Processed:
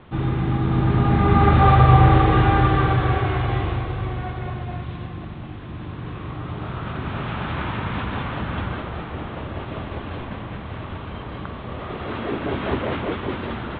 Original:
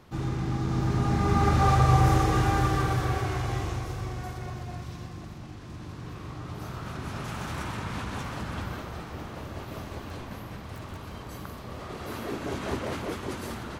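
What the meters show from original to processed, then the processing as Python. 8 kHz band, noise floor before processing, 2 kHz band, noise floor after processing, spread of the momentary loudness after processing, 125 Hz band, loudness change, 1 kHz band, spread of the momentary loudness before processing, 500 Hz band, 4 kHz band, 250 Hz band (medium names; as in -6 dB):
under -35 dB, -42 dBFS, +7.5 dB, -35 dBFS, 18 LU, +7.5 dB, +7.5 dB, +7.5 dB, 18 LU, +7.5 dB, +5.0 dB, +7.5 dB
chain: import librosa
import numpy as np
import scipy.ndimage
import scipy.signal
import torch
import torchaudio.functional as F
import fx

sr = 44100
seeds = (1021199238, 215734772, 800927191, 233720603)

y = scipy.signal.sosfilt(scipy.signal.butter(12, 3700.0, 'lowpass', fs=sr, output='sos'), x)
y = y * 10.0 ** (7.5 / 20.0)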